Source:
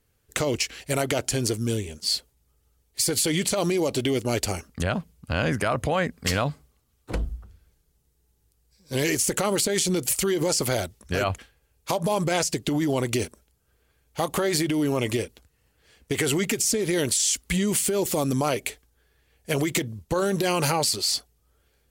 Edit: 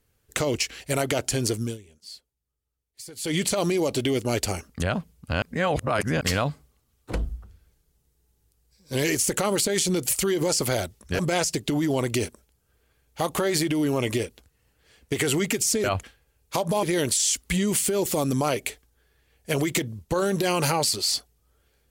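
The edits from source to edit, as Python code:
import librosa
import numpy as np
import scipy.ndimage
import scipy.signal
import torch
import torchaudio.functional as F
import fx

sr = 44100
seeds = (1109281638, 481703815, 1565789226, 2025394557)

y = fx.edit(x, sr, fx.fade_down_up(start_s=1.61, length_s=1.74, db=-17.5, fade_s=0.17),
    fx.reverse_span(start_s=5.42, length_s=0.79),
    fx.move(start_s=11.19, length_s=0.99, to_s=16.83), tone=tone)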